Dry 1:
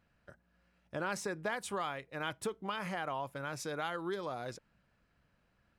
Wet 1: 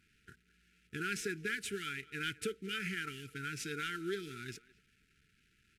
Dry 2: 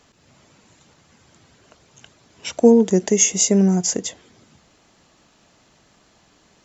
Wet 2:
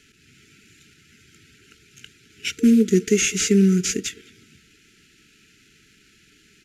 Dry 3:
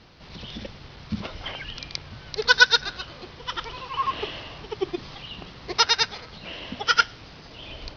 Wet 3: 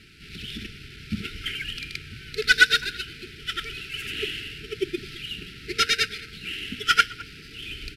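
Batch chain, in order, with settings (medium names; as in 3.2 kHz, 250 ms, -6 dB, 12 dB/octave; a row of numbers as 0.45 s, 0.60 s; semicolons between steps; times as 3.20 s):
CVSD coder 64 kbps; FFT band-reject 460–1300 Hz; peaking EQ 2.5 kHz +8 dB 0.61 oct; speakerphone echo 210 ms, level -20 dB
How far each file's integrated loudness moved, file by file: -0.5 LU, -3.0 LU, -1.5 LU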